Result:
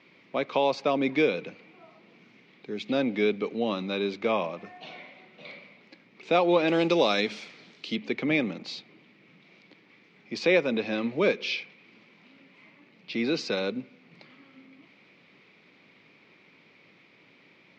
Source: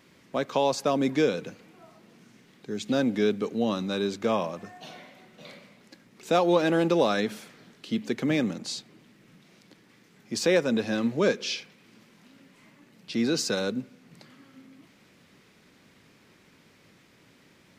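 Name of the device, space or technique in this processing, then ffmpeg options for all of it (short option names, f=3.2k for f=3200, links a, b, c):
kitchen radio: -filter_complex "[0:a]highpass=170,equalizer=f=230:t=q:w=4:g=-3,equalizer=f=1.6k:t=q:w=4:g=-5,equalizer=f=2.3k:t=q:w=4:g=9,lowpass=f=4.4k:w=0.5412,lowpass=f=4.4k:w=1.3066,asettb=1/sr,asplit=3[a][b][c];[a]atrim=end=6.684[d];[b]atrim=start=6.68:end=7.96,asetpts=PTS-STARTPTS,afade=t=in:d=0.004:c=qsin,afade=t=out:st=1.276:d=0.004:c=qsin,bass=f=250:g=0,treble=f=4k:g=14[e];[c]atrim=start=7.956[f];[d][e]acrossfade=d=0.004:c1=hsin:c2=qsin[g];[g][f]acrossfade=d=0.004:c1=qsin:c2=hsin"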